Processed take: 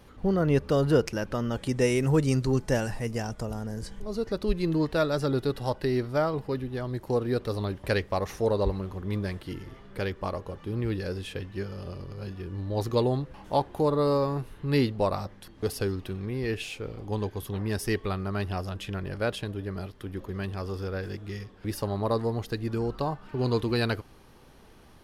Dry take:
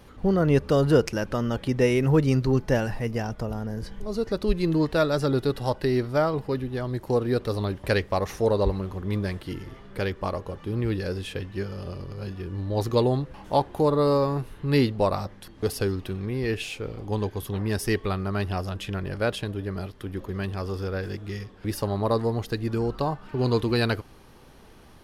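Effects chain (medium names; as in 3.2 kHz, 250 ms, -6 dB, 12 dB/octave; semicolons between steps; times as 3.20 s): 1.56–4.00 s: peaking EQ 8 kHz +12.5 dB 0.87 oct; trim -3 dB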